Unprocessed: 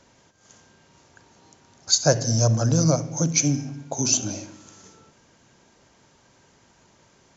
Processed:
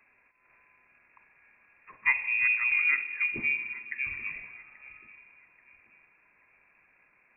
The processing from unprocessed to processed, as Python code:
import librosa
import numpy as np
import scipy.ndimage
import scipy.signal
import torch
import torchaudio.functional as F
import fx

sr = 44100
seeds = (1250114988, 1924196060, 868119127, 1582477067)

y = fx.echo_feedback(x, sr, ms=833, feedback_pct=41, wet_db=-19.5)
y = fx.rev_spring(y, sr, rt60_s=3.2, pass_ms=(58,), chirp_ms=20, drr_db=16.0)
y = fx.freq_invert(y, sr, carrier_hz=2600)
y = y * librosa.db_to_amplitude(-6.5)